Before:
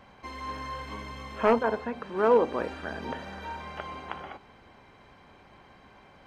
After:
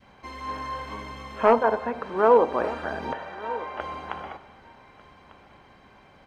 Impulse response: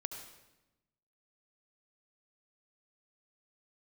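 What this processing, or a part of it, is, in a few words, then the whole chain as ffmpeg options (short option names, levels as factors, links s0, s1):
compressed reverb return: -filter_complex "[0:a]asettb=1/sr,asplit=3[s0][s1][s2];[s0]atrim=end=3.134[s3];[s1]atrim=start=3.13:end=3.8,asetpts=PTS-STARTPTS,afade=t=in:d=0.004:c=qsin,afade=t=out:st=0.666:d=0.004:c=qsin,bass=f=250:g=-14,treble=f=4000:g=-10[s4];[s2]atrim=start=3.796[s5];[s3][s4]acrossfade=d=0.004:c1=hsin:c2=qsin[s6];[s6][s5]acrossfade=d=0.004:c1=qsin:c2=hsin,aecho=1:1:1197:0.133,asplit=2[s7][s8];[1:a]atrim=start_sample=2205[s9];[s8][s9]afir=irnorm=-1:irlink=0,acompressor=threshold=0.0316:ratio=6,volume=0.473[s10];[s7][s10]amix=inputs=2:normalize=0,adynamicequalizer=threshold=0.0141:dfrequency=820:dqfactor=0.72:tfrequency=820:tqfactor=0.72:attack=5:release=100:ratio=0.375:range=4:mode=boostabove:tftype=bell,volume=0.794"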